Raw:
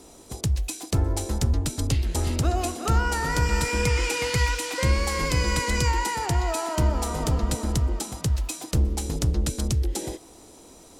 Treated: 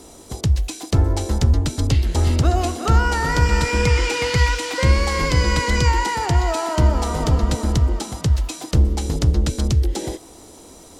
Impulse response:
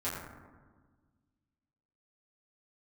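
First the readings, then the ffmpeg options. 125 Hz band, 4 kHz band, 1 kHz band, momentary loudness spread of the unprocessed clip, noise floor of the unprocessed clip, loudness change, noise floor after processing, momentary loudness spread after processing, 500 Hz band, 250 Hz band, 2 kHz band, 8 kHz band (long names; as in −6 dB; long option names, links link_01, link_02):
+6.5 dB, +4.5 dB, +5.5 dB, 5 LU, −49 dBFS, +6.0 dB, −43 dBFS, 4 LU, +5.5 dB, +5.5 dB, +5.0 dB, +0.5 dB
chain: -filter_complex "[0:a]bandreject=frequency=2500:width=24,acrossover=split=6300[link_01][link_02];[link_02]acompressor=threshold=-45dB:ratio=4:attack=1:release=60[link_03];[link_01][link_03]amix=inputs=2:normalize=0,equalizer=frequency=81:width=5.1:gain=4,volume=5.5dB"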